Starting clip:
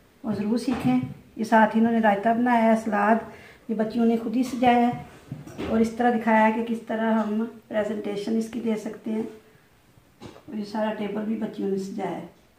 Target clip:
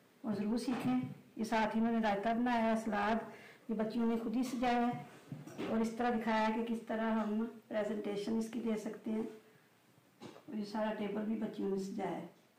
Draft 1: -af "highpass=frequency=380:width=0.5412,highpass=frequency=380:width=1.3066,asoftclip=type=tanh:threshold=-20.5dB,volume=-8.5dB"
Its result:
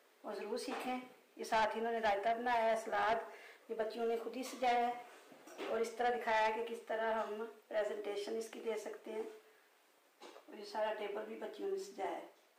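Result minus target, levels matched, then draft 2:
125 Hz band −16.0 dB
-af "highpass=frequency=130:width=0.5412,highpass=frequency=130:width=1.3066,asoftclip=type=tanh:threshold=-20.5dB,volume=-8.5dB"

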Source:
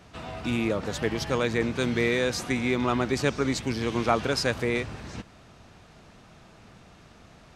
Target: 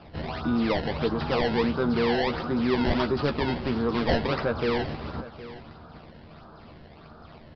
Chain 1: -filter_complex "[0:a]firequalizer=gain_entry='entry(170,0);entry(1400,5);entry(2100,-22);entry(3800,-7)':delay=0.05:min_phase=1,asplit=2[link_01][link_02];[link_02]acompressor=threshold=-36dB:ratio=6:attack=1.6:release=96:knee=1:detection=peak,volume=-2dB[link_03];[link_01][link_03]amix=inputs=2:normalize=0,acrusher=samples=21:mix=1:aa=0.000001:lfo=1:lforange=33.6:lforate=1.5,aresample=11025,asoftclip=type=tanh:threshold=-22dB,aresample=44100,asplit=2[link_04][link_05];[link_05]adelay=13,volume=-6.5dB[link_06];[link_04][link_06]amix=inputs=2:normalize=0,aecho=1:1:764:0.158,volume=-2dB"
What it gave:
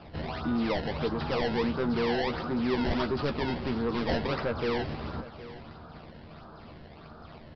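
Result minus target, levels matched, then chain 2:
downward compressor: peak gain reduction +8 dB; soft clipping: distortion +7 dB
-filter_complex "[0:a]firequalizer=gain_entry='entry(170,0);entry(1400,5);entry(2100,-22);entry(3800,-7)':delay=0.05:min_phase=1,asplit=2[link_01][link_02];[link_02]acompressor=threshold=-26.5dB:ratio=6:attack=1.6:release=96:knee=1:detection=peak,volume=-2dB[link_03];[link_01][link_03]amix=inputs=2:normalize=0,acrusher=samples=21:mix=1:aa=0.000001:lfo=1:lforange=33.6:lforate=1.5,aresample=11025,asoftclip=type=tanh:threshold=-13.5dB,aresample=44100,asplit=2[link_04][link_05];[link_05]adelay=13,volume=-6.5dB[link_06];[link_04][link_06]amix=inputs=2:normalize=0,aecho=1:1:764:0.158,volume=-2dB"

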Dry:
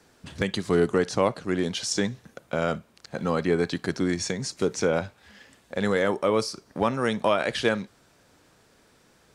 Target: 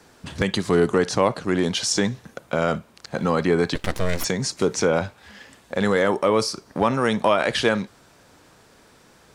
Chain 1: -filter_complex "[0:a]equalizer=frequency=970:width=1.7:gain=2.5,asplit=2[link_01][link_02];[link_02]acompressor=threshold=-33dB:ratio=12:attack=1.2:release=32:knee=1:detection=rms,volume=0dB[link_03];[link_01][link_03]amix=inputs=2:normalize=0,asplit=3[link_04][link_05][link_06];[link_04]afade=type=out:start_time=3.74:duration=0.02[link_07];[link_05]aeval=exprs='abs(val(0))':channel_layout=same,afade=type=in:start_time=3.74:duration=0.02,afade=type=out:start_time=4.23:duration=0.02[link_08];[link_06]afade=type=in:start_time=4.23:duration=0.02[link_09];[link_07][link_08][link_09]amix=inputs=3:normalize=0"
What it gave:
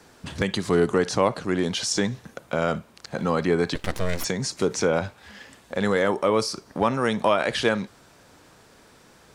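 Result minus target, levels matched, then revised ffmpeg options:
downward compressor: peak gain reduction +9.5 dB
-filter_complex "[0:a]equalizer=frequency=970:width=1.7:gain=2.5,asplit=2[link_01][link_02];[link_02]acompressor=threshold=-22.5dB:ratio=12:attack=1.2:release=32:knee=1:detection=rms,volume=0dB[link_03];[link_01][link_03]amix=inputs=2:normalize=0,asplit=3[link_04][link_05][link_06];[link_04]afade=type=out:start_time=3.74:duration=0.02[link_07];[link_05]aeval=exprs='abs(val(0))':channel_layout=same,afade=type=in:start_time=3.74:duration=0.02,afade=type=out:start_time=4.23:duration=0.02[link_08];[link_06]afade=type=in:start_time=4.23:duration=0.02[link_09];[link_07][link_08][link_09]amix=inputs=3:normalize=0"

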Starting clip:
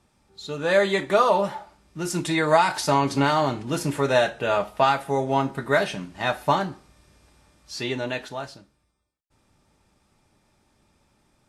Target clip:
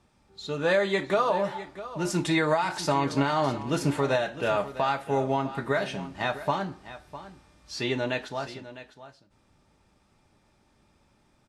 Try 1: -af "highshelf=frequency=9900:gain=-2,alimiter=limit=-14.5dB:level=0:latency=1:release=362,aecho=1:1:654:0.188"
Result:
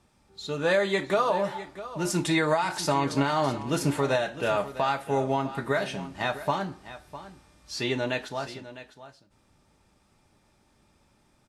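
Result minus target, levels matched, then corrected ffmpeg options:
8,000 Hz band +3.0 dB
-af "highshelf=frequency=9900:gain=-12,alimiter=limit=-14.5dB:level=0:latency=1:release=362,aecho=1:1:654:0.188"

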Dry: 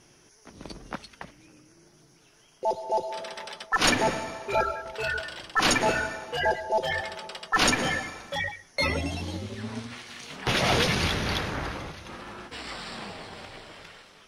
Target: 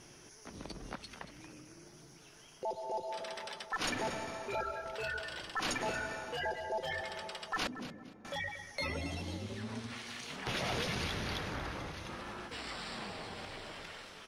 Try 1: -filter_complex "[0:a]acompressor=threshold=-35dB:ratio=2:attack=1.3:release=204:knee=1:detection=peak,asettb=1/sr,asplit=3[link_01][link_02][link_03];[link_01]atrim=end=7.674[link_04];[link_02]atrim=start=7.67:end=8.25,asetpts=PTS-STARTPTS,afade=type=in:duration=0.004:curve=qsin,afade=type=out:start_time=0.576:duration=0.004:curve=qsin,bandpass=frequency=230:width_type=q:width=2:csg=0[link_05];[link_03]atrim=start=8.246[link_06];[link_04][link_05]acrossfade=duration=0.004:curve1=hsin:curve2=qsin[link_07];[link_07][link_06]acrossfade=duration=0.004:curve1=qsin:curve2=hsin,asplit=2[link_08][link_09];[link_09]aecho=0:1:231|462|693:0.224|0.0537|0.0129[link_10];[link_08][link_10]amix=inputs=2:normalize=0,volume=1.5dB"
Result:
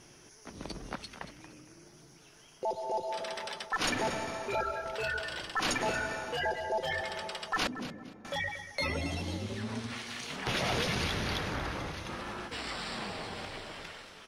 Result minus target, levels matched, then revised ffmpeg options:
downward compressor: peak gain reduction −4.5 dB
-filter_complex "[0:a]acompressor=threshold=-44dB:ratio=2:attack=1.3:release=204:knee=1:detection=peak,asettb=1/sr,asplit=3[link_01][link_02][link_03];[link_01]atrim=end=7.674[link_04];[link_02]atrim=start=7.67:end=8.25,asetpts=PTS-STARTPTS,afade=type=in:duration=0.004:curve=qsin,afade=type=out:start_time=0.576:duration=0.004:curve=qsin,bandpass=frequency=230:width_type=q:width=2:csg=0[link_05];[link_03]atrim=start=8.246[link_06];[link_04][link_05]acrossfade=duration=0.004:curve1=hsin:curve2=qsin[link_07];[link_07][link_06]acrossfade=duration=0.004:curve1=qsin:curve2=hsin,asplit=2[link_08][link_09];[link_09]aecho=0:1:231|462|693:0.224|0.0537|0.0129[link_10];[link_08][link_10]amix=inputs=2:normalize=0,volume=1.5dB"

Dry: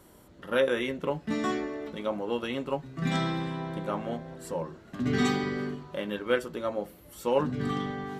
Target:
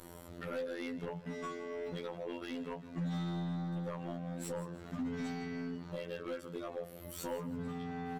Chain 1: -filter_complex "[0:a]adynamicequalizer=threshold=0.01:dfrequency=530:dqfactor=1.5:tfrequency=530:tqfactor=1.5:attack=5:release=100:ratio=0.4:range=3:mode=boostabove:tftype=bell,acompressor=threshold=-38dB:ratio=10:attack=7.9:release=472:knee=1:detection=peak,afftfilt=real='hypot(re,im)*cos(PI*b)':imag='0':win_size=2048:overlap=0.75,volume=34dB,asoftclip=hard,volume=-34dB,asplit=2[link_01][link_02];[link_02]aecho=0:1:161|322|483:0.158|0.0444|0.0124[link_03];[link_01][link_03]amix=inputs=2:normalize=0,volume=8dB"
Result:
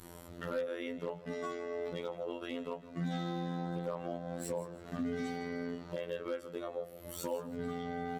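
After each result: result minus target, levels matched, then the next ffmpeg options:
gain into a clipping stage and back: distortion −9 dB; 125 Hz band −3.0 dB
-filter_complex "[0:a]adynamicequalizer=threshold=0.01:dfrequency=530:dqfactor=1.5:tfrequency=530:tqfactor=1.5:attack=5:release=100:ratio=0.4:range=3:mode=boostabove:tftype=bell,acompressor=threshold=-38dB:ratio=10:attack=7.9:release=472:knee=1:detection=peak,afftfilt=real='hypot(re,im)*cos(PI*b)':imag='0':win_size=2048:overlap=0.75,volume=40.5dB,asoftclip=hard,volume=-40.5dB,asplit=2[link_01][link_02];[link_02]aecho=0:1:161|322|483:0.158|0.0444|0.0124[link_03];[link_01][link_03]amix=inputs=2:normalize=0,volume=8dB"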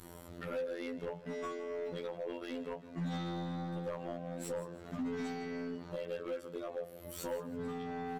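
125 Hz band −3.0 dB
-filter_complex "[0:a]adynamicequalizer=threshold=0.01:dfrequency=140:dqfactor=1.5:tfrequency=140:tqfactor=1.5:attack=5:release=100:ratio=0.4:range=3:mode=boostabove:tftype=bell,acompressor=threshold=-38dB:ratio=10:attack=7.9:release=472:knee=1:detection=peak,afftfilt=real='hypot(re,im)*cos(PI*b)':imag='0':win_size=2048:overlap=0.75,volume=40.5dB,asoftclip=hard,volume=-40.5dB,asplit=2[link_01][link_02];[link_02]aecho=0:1:161|322|483:0.158|0.0444|0.0124[link_03];[link_01][link_03]amix=inputs=2:normalize=0,volume=8dB"

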